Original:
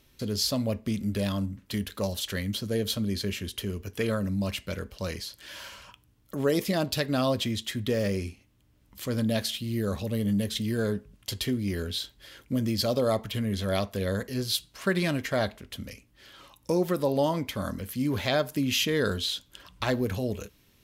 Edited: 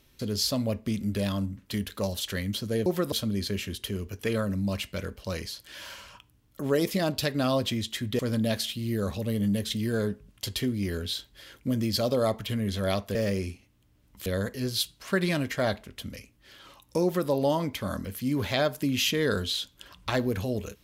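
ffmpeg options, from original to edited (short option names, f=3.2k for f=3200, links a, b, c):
-filter_complex "[0:a]asplit=6[a][b][c][d][e][f];[a]atrim=end=2.862[g];[b]atrim=start=16.778:end=17.042[h];[c]atrim=start=2.858:end=7.932[i];[d]atrim=start=9.038:end=14.002[j];[e]atrim=start=7.928:end=9.042[k];[f]atrim=start=13.998[l];[g][h]acrossfade=d=0.004:c1=hsin:c2=hsin[m];[m][i]acrossfade=d=0.004:c1=hsin:c2=hsin[n];[n][j]acrossfade=d=0.004:c1=hsin:c2=hsin[o];[o][k]acrossfade=d=0.004:c1=hsin:c2=hsin[p];[p][l]acrossfade=d=0.004:c1=hsin:c2=hsin"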